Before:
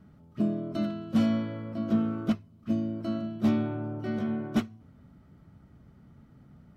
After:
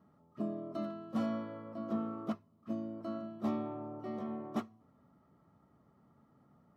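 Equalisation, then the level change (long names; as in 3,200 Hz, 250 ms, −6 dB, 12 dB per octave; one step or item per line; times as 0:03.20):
high-pass filter 540 Hz 6 dB per octave
Butterworth band-reject 1,500 Hz, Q 7.8
high shelf with overshoot 1,700 Hz −8.5 dB, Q 1.5
−2.5 dB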